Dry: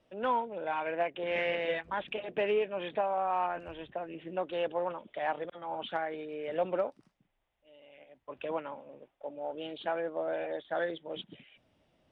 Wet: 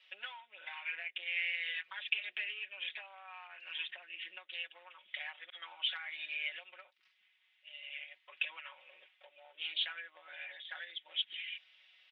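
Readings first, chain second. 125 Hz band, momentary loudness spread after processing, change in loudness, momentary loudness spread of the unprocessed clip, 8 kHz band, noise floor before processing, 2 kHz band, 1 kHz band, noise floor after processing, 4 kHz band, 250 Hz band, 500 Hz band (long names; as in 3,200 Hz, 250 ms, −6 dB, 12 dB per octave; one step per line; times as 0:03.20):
below −40 dB, 15 LU, −5.5 dB, 11 LU, can't be measured, −77 dBFS, +1.0 dB, −20.5 dB, −73 dBFS, +7.5 dB, below −35 dB, −30.0 dB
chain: comb filter 5.4 ms, depth 100%
downward compressor 10 to 1, threshold −41 dBFS, peak gain reduction 20.5 dB
flat-topped band-pass 2,800 Hz, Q 1.4
level +14 dB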